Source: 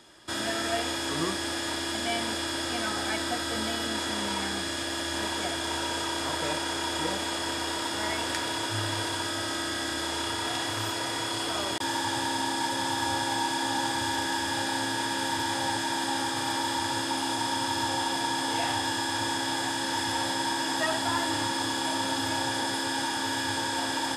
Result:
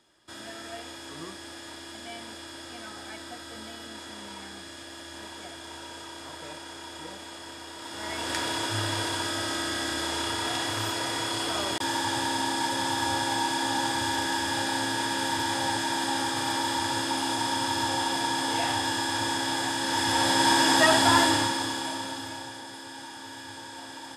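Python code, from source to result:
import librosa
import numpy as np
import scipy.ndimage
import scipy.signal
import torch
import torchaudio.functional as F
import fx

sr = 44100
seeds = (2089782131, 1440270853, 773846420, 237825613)

y = fx.gain(x, sr, db=fx.line((7.74, -11.0), (8.38, 1.0), (19.8, 1.0), (20.52, 8.0), (21.21, 8.0), (21.57, 0.5), (22.62, -12.0)))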